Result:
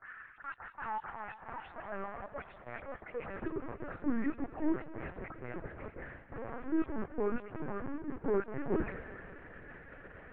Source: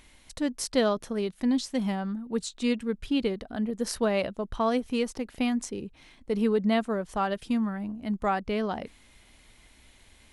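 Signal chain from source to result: delay that grows with frequency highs late, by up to 137 ms; peaking EQ 1.4 kHz -7 dB 0.25 oct; reverse; compression 6:1, threshold -39 dBFS, peak gain reduction 18.5 dB; reverse; transient shaper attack -7 dB, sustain +7 dB; in parallel at -7 dB: integer overflow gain 39 dB; on the sum: mistuned SSB -360 Hz 350–2200 Hz; high-pass sweep 1.3 kHz -> 290 Hz, 0.16–4.10 s; thinning echo 192 ms, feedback 79%, high-pass 240 Hz, level -15.5 dB; LPC vocoder at 8 kHz pitch kept; trim +8 dB

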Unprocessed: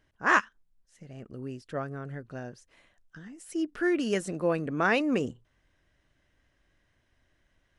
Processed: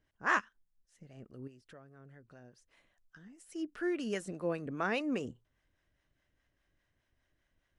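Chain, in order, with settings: 1.47–3.52 s: compression 12:1, threshold -43 dBFS, peak gain reduction 15.5 dB; harmonic tremolo 4.9 Hz, depth 50%, crossover 540 Hz; trim -5.5 dB

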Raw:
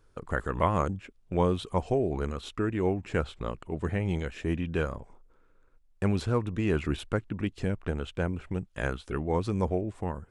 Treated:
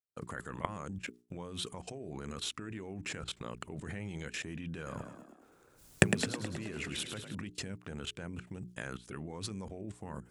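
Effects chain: recorder AGC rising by 26 dB/s; high-pass 150 Hz 12 dB/octave; level held to a coarse grid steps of 22 dB; gate with hold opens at -56 dBFS; tone controls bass +8 dB, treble +13 dB; hum notches 60/120/180/240/300/360/420 Hz; 4.76–7.35 s: frequency-shifting echo 106 ms, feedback 60%, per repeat +40 Hz, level -7.5 dB; dynamic bell 1.9 kHz, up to +6 dB, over -57 dBFS, Q 0.91; trim -1.5 dB

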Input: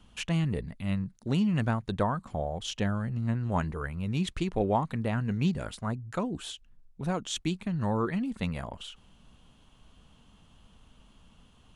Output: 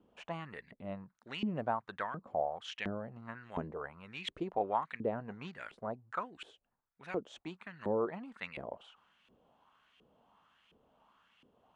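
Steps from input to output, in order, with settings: LFO band-pass saw up 1.4 Hz 370–2500 Hz; trim +3.5 dB

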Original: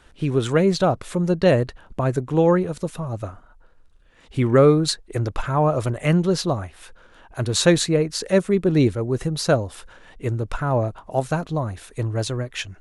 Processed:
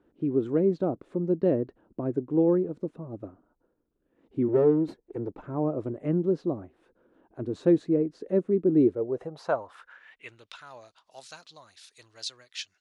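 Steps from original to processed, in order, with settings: 4.48–5.39 s: comb filter that takes the minimum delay 2.2 ms; band-pass sweep 310 Hz -> 4.6 kHz, 8.75–10.67 s

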